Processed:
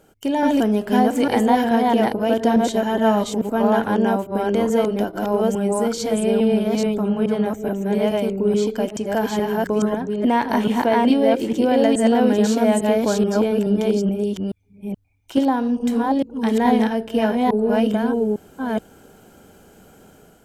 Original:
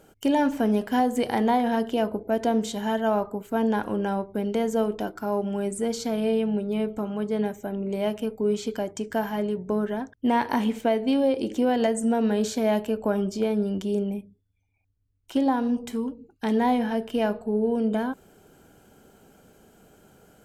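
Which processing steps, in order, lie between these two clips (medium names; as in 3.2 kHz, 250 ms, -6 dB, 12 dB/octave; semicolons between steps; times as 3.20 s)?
chunks repeated in reverse 427 ms, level -0.5 dB; level rider gain up to 4 dB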